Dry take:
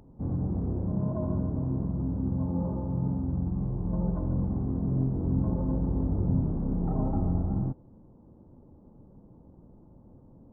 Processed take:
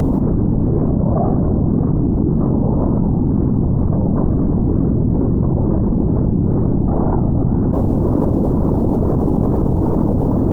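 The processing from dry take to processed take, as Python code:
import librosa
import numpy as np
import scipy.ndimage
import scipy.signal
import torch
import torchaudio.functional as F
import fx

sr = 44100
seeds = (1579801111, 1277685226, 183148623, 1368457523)

y = fx.wow_flutter(x, sr, seeds[0], rate_hz=2.1, depth_cents=150.0)
y = fx.whisperise(y, sr, seeds[1])
y = fx.env_flatten(y, sr, amount_pct=100)
y = y * librosa.db_to_amplitude(7.5)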